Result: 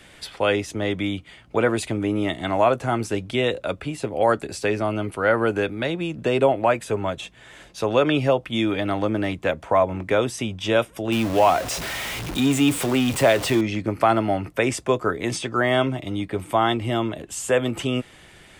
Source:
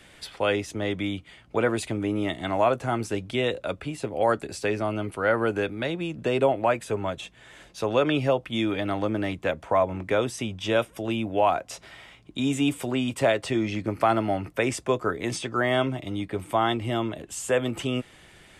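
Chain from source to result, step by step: 11.12–13.61 s: jump at every zero crossing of -28.5 dBFS; trim +3.5 dB

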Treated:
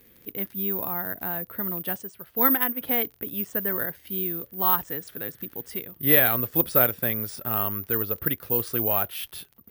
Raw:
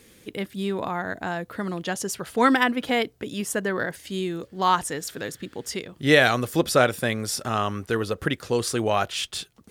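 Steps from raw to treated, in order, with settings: tone controls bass +2 dB, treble -10 dB; crackle 31 per s -33 dBFS; careless resampling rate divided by 3×, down filtered, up zero stuff; 2.01–2.81 s: upward expansion 1.5:1, over -27 dBFS; trim -6 dB

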